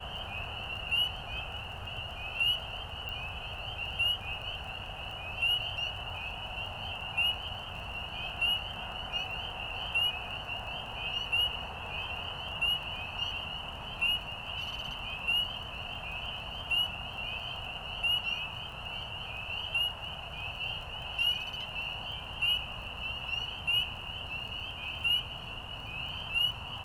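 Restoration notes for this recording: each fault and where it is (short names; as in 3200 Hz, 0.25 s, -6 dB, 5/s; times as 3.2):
crackle 23/s -42 dBFS
3.09 pop -26 dBFS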